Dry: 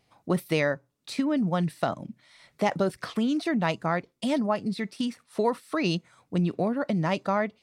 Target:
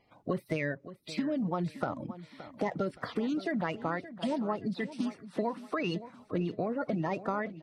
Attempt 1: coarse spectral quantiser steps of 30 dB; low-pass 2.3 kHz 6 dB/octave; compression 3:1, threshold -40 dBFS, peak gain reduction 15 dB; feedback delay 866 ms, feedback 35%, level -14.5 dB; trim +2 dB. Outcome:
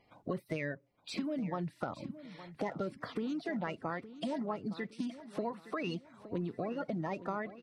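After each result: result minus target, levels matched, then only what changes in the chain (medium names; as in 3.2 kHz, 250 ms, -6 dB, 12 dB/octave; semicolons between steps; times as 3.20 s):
echo 295 ms late; compression: peak gain reduction +4.5 dB
change: feedback delay 571 ms, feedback 35%, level -14.5 dB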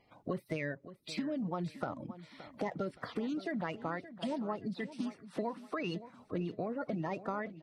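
compression: peak gain reduction +4.5 dB
change: compression 3:1, threshold -33 dBFS, peak gain reduction 10 dB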